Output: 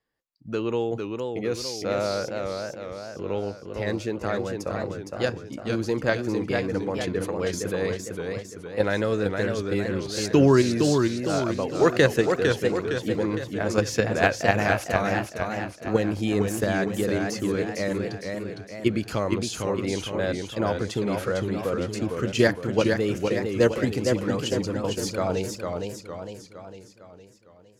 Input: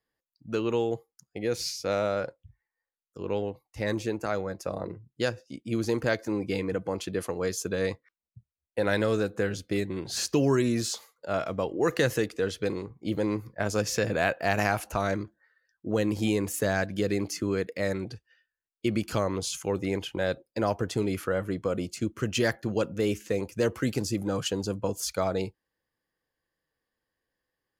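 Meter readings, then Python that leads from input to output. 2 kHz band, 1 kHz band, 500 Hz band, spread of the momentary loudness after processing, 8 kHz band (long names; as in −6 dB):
+4.5 dB, +4.0 dB, +4.5 dB, 11 LU, +0.5 dB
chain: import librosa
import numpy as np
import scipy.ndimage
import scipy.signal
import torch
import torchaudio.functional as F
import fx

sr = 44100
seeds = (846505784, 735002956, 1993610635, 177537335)

p1 = fx.high_shelf(x, sr, hz=7800.0, db=-9.0)
p2 = fx.level_steps(p1, sr, step_db=24)
p3 = p1 + F.gain(torch.from_numpy(p2), 2.5).numpy()
y = fx.echo_warbled(p3, sr, ms=458, feedback_pct=51, rate_hz=2.8, cents=134, wet_db=-4.5)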